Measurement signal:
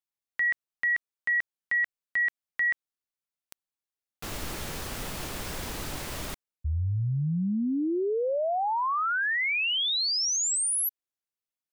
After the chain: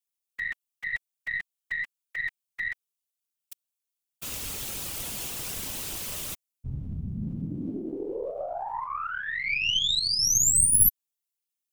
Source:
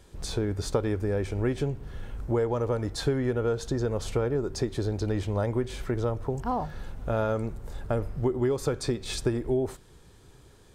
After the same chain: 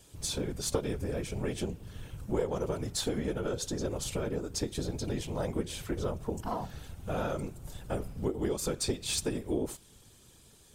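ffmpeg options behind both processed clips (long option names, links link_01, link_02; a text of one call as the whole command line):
ffmpeg -i in.wav -af "afftfilt=real='hypot(re,im)*cos(2*PI*random(0))':imag='hypot(re,im)*sin(2*PI*random(1))':win_size=512:overlap=0.75,aexciter=amount=3.5:drive=1.4:freq=2500,aeval=exprs='0.316*(cos(1*acos(clip(val(0)/0.316,-1,1)))-cos(1*PI/2))+0.112*(cos(2*acos(clip(val(0)/0.316,-1,1)))-cos(2*PI/2))':channel_layout=same" out.wav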